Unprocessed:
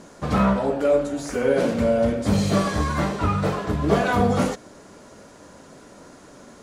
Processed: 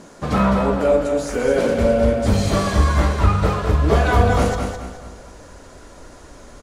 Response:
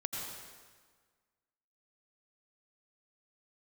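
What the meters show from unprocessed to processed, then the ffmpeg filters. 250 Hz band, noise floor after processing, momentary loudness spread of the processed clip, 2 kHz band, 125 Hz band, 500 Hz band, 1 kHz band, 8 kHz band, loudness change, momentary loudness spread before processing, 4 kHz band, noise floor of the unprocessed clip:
+1.0 dB, -43 dBFS, 8 LU, +3.5 dB, +6.5 dB, +3.5 dB, +3.5 dB, +3.5 dB, +3.5 dB, 5 LU, +3.5 dB, -47 dBFS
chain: -filter_complex "[0:a]asplit=2[a][b];[b]adelay=225,lowpass=f=2k:p=1,volume=-16dB,asplit=2[c][d];[d]adelay=225,lowpass=f=2k:p=1,volume=0.53,asplit=2[e][f];[f]adelay=225,lowpass=f=2k:p=1,volume=0.53,asplit=2[g][h];[h]adelay=225,lowpass=f=2k:p=1,volume=0.53,asplit=2[i][j];[j]adelay=225,lowpass=f=2k:p=1,volume=0.53[k];[c][e][g][i][k]amix=inputs=5:normalize=0[l];[a][l]amix=inputs=2:normalize=0,asubboost=boost=11:cutoff=55,asplit=2[m][n];[n]aecho=0:1:209|418|627|836:0.501|0.165|0.0546|0.018[o];[m][o]amix=inputs=2:normalize=0,volume=2.5dB"

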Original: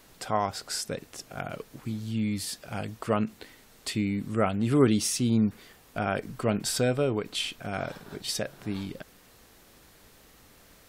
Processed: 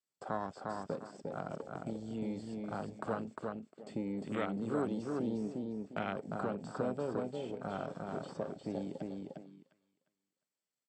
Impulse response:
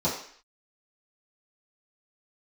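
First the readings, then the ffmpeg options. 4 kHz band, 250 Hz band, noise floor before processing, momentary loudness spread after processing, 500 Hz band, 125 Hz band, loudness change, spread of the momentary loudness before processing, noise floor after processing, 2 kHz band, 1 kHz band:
-22.0 dB, -9.5 dB, -57 dBFS, 7 LU, -7.5 dB, -13.0 dB, -10.0 dB, 13 LU, under -85 dBFS, -10.5 dB, -7.5 dB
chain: -filter_complex "[0:a]aeval=exprs='if(lt(val(0),0),0.447*val(0),val(0))':c=same,acrossover=split=370|1800[a][b][c];[a]acompressor=threshold=-40dB:ratio=4[d];[b]acompressor=threshold=-41dB:ratio=4[e];[c]acompressor=threshold=-51dB:ratio=4[f];[d][e][f]amix=inputs=3:normalize=0,agate=range=-26dB:threshold=-48dB:ratio=16:detection=peak,highpass=180,asplit=2[g][h];[h]adelay=353,lowpass=f=4.4k:p=1,volume=-3dB,asplit=2[i][j];[j]adelay=353,lowpass=f=4.4k:p=1,volume=0.3,asplit=2[k][l];[l]adelay=353,lowpass=f=4.4k:p=1,volume=0.3,asplit=2[m][n];[n]adelay=353,lowpass=f=4.4k:p=1,volume=0.3[o];[g][i][k][m][o]amix=inputs=5:normalize=0,asplit=2[p][q];[1:a]atrim=start_sample=2205[r];[q][r]afir=irnorm=-1:irlink=0,volume=-27dB[s];[p][s]amix=inputs=2:normalize=0,acrossover=split=4400[t][u];[u]acompressor=threshold=-57dB:ratio=4:attack=1:release=60[v];[t][v]amix=inputs=2:normalize=0,lowpass=f=7.9k:t=q:w=13,aemphasis=mode=reproduction:type=50fm,bandreject=f=3.9k:w=7.7,afwtdn=0.00708,equalizer=f=4.4k:w=1.1:g=11,volume=2dB"

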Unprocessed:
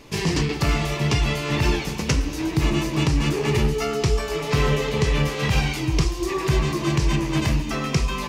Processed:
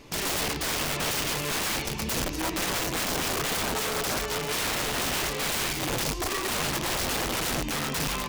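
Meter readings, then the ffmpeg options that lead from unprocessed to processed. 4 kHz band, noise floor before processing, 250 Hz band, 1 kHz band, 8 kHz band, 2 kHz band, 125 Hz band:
0.0 dB, -30 dBFS, -10.0 dB, -2.0 dB, +4.5 dB, -2.0 dB, -15.0 dB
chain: -af "aeval=exprs='(mod(10.6*val(0)+1,2)-1)/10.6':c=same,volume=-3dB"

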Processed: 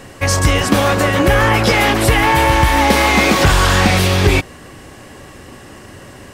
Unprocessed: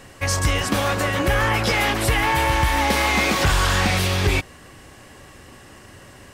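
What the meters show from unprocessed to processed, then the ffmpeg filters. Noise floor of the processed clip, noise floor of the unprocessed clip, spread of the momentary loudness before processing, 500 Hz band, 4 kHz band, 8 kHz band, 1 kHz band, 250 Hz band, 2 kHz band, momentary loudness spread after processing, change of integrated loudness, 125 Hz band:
-38 dBFS, -46 dBFS, 3 LU, +8.5 dB, +5.5 dB, +5.5 dB, +7.0 dB, +9.5 dB, +6.0 dB, 3 LU, +7.0 dB, +7.0 dB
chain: -af "equalizer=f=300:w=0.44:g=4,volume=5.5dB"

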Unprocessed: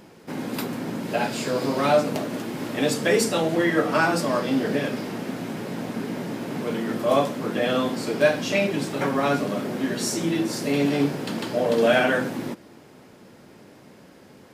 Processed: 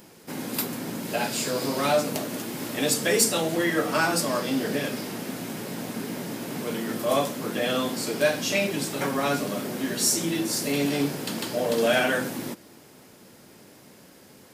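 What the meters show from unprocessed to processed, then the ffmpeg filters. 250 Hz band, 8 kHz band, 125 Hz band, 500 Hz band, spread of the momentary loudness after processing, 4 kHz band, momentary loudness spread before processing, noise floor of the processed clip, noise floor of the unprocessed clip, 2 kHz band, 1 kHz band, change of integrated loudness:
-3.5 dB, +6.5 dB, -3.5 dB, -3.5 dB, 11 LU, +2.0 dB, 10 LU, -51 dBFS, -49 dBFS, -1.5 dB, -3.0 dB, -2.0 dB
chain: -af "acontrast=42,crystalizer=i=2.5:c=0,volume=-9dB"

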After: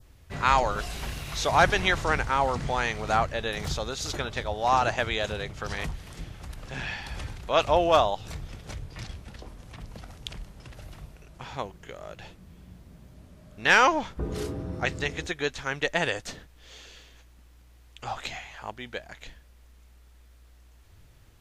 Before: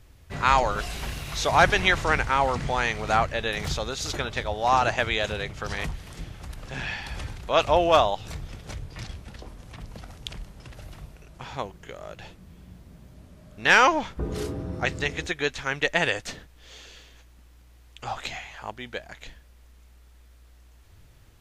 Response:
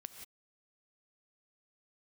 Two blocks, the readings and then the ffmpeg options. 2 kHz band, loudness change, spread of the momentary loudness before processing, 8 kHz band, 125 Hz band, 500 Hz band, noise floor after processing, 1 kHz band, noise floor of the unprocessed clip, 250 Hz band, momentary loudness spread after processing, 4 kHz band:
-2.5 dB, -2.0 dB, 22 LU, -1.5 dB, -1.5 dB, -1.5 dB, -55 dBFS, -1.5 dB, -53 dBFS, -1.5 dB, 22 LU, -2.5 dB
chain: -af "adynamicequalizer=threshold=0.0112:dfrequency=2300:dqfactor=1.4:tfrequency=2300:tqfactor=1.4:attack=5:release=100:ratio=0.375:range=2:mode=cutabove:tftype=bell,volume=-1.5dB"

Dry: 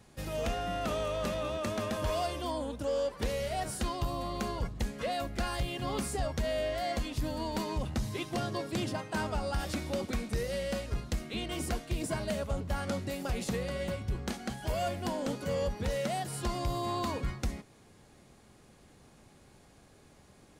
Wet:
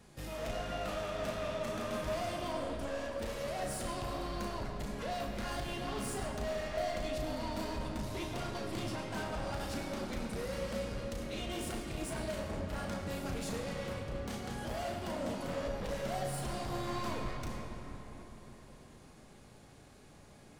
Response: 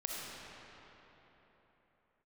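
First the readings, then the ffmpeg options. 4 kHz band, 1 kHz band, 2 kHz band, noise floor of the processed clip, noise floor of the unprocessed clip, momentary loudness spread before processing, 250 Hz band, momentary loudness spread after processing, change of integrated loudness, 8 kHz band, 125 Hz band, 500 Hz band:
-4.0 dB, -3.5 dB, -2.5 dB, -57 dBFS, -59 dBFS, 3 LU, -3.5 dB, 15 LU, -4.0 dB, -3.5 dB, -5.5 dB, -3.5 dB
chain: -filter_complex "[0:a]asoftclip=type=tanh:threshold=-36.5dB,flanger=delay=4.2:depth=4.8:regen=-54:speed=1.4:shape=triangular,asplit=2[a][b];[1:a]atrim=start_sample=2205,adelay=35[c];[b][c]afir=irnorm=-1:irlink=0,volume=-3dB[d];[a][d]amix=inputs=2:normalize=0,volume=3dB"

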